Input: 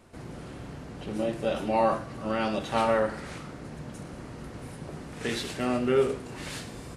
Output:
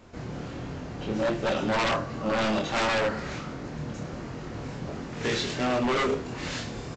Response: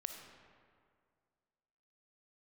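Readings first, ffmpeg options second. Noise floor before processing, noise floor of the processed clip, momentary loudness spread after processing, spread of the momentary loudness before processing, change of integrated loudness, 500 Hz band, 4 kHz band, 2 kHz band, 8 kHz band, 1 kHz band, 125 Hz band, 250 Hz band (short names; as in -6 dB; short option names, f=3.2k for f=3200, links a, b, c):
-43 dBFS, -39 dBFS, 12 LU, 17 LU, -0.5 dB, -0.5 dB, +6.0 dB, +6.0 dB, +3.0 dB, +0.5 dB, +3.5 dB, +1.5 dB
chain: -af "flanger=delay=22.5:depth=5.1:speed=1.4,aresample=16000,aeval=exprs='0.0422*(abs(mod(val(0)/0.0422+3,4)-2)-1)':c=same,aresample=44100,volume=7.5dB"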